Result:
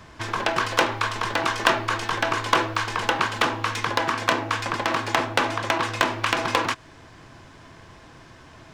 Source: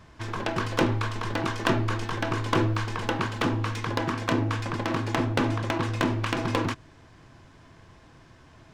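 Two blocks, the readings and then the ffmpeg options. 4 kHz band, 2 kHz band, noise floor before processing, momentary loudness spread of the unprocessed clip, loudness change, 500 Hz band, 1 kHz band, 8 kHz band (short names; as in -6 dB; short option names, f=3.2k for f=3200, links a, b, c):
+8.0 dB, +8.0 dB, -53 dBFS, 4 LU, +4.0 dB, +2.5 dB, +7.0 dB, +8.0 dB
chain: -filter_complex "[0:a]lowshelf=f=270:g=-5.5,acrossover=split=510|1600[a][b][c];[a]acompressor=threshold=-41dB:ratio=6[d];[d][b][c]amix=inputs=3:normalize=0,volume=8dB"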